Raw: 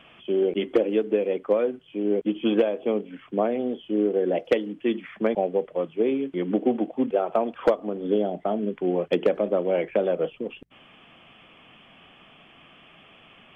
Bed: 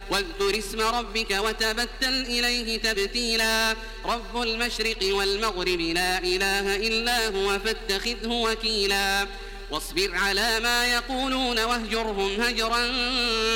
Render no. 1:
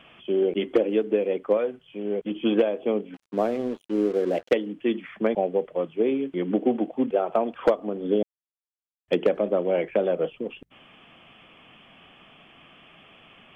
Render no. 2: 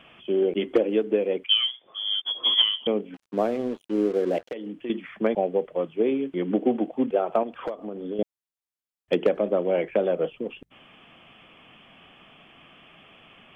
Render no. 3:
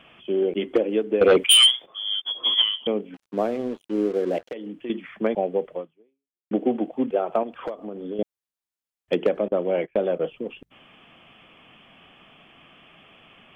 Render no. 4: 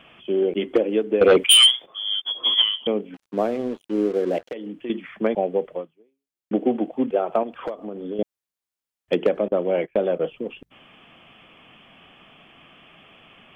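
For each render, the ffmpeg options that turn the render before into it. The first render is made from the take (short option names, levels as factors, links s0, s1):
-filter_complex "[0:a]asettb=1/sr,asplit=3[s0][s1][s2];[s0]atrim=end=1.574[s3];[s1]atrim=start=1.57:end=2.31,asetpts=PTS-STARTPTS,afade=t=in:d=0.004:c=qsin,afade=t=out:st=0.736:d=0.004:c=qsin,equalizer=f=300:w=1.9:g=-8.5[s4];[s2]atrim=start=2.306[s5];[s3][s4]acrossfade=d=0.004:c1=hsin:c2=qsin[s6];[s6][s5]acrossfade=d=0.004:c1=qsin:c2=hsin,asettb=1/sr,asplit=3[s7][s8][s9];[s7]atrim=end=3.144[s10];[s8]atrim=start=3.14:end=4.53,asetpts=PTS-STARTPTS,afade=t=in:d=0.004:c=qsin,afade=t=out:st=1.386:d=0.004:c=qsin,aeval=exprs='sgn(val(0))*max(abs(val(0))-0.00794,0)':c=same[s11];[s9]atrim=start=4.526[s12];[s10][s11]acrossfade=d=0.004:c1=hsin:c2=qsin[s13];[s13][s12]acrossfade=d=0.004:c1=qsin:c2=hsin,asplit=3[s14][s15][s16];[s14]atrim=end=8.23,asetpts=PTS-STARTPTS,afade=t=out:st=8.226:d=0.004:c=hsin[s17];[s15]atrim=start=8.23:end=9.08,asetpts=PTS-STARTPTS,volume=0[s18];[s16]atrim=start=9.08,asetpts=PTS-STARTPTS,afade=t=in:d=0.004:c=hsin[s19];[s17][s18][s19]concat=n=3:v=0:a=1"
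-filter_complex "[0:a]asettb=1/sr,asplit=3[s0][s1][s2];[s0]atrim=end=1.444[s3];[s1]atrim=start=1.44:end=2.87,asetpts=PTS-STARTPTS,afade=t=in:d=0.004:c=qsin,afade=t=out:st=1.426:d=0.004:c=qsin,lowpass=f=3100:t=q:w=0.5098,lowpass=f=3100:t=q:w=0.6013,lowpass=f=3100:t=q:w=0.9,lowpass=f=3100:t=q:w=2.563,afreqshift=-3600[s4];[s2]atrim=start=2.866[s5];[s3][s4]acrossfade=d=0.004:c1=hsin:c2=qsin[s6];[s6][s5]acrossfade=d=0.004:c1=qsin:c2=hsin,asettb=1/sr,asplit=3[s7][s8][s9];[s7]atrim=end=4.384[s10];[s8]atrim=start=4.38:end=4.9,asetpts=PTS-STARTPTS,afade=t=in:d=0.004:c=qsin,afade=t=out:st=0.516:d=0.004:c=qsin,acompressor=threshold=0.0316:ratio=6:attack=3.2:release=140:knee=1:detection=peak[s11];[s9]atrim=start=4.896[s12];[s10][s11]acrossfade=d=0.004:c1=hsin:c2=qsin[s13];[s13][s12]acrossfade=d=0.004:c1=qsin:c2=hsin,asettb=1/sr,asplit=3[s14][s15][s16];[s14]atrim=end=7.434[s17];[s15]atrim=start=7.43:end=8.19,asetpts=PTS-STARTPTS,afade=t=in:d=0.004:c=qsin,afade=t=out:st=0.756:d=0.004:c=qsin,acompressor=threshold=0.0251:ratio=2.5:attack=3.2:release=140:knee=1:detection=peak[s18];[s16]atrim=start=8.186[s19];[s17][s18]acrossfade=d=0.004:c1=hsin:c2=qsin[s20];[s20][s19]acrossfade=d=0.004:c1=qsin:c2=hsin"
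-filter_complex "[0:a]asettb=1/sr,asplit=3[s0][s1][s2];[s0]atrim=end=1.214[s3];[s1]atrim=start=1.21:end=1.86,asetpts=PTS-STARTPTS,afade=t=in:d=0.004:c=qsin,afade=t=out:st=0.646:d=0.004:c=qsin,aeval=exprs='0.316*sin(PI/2*3.16*val(0)/0.316)':c=same[s4];[s2]atrim=start=1.856[s5];[s3][s4]acrossfade=d=0.004:c1=hsin:c2=qsin[s6];[s6][s5]acrossfade=d=0.004:c1=qsin:c2=hsin,asettb=1/sr,asplit=3[s7][s8][s9];[s7]atrim=end=9.484[s10];[s8]atrim=start=9.48:end=10.28,asetpts=PTS-STARTPTS,afade=t=in:d=0.004:c=qsin,afade=t=out:st=0.796:d=0.004:c=qsin,agate=range=0.0891:threshold=0.0251:ratio=16:release=100:detection=peak[s11];[s9]atrim=start=10.276[s12];[s10][s11]acrossfade=d=0.004:c1=hsin:c2=qsin[s13];[s13][s12]acrossfade=d=0.004:c1=qsin:c2=hsin,asplit=2[s14][s15];[s14]atrim=end=6.51,asetpts=PTS-STARTPTS,afade=t=out:st=5.75:d=0.76:c=exp[s16];[s15]atrim=start=6.51,asetpts=PTS-STARTPTS,afade=t=in:d=0.004:c=hsin[s17];[s16][s17]concat=n=2:v=0:a=1"
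-af "volume=1.19"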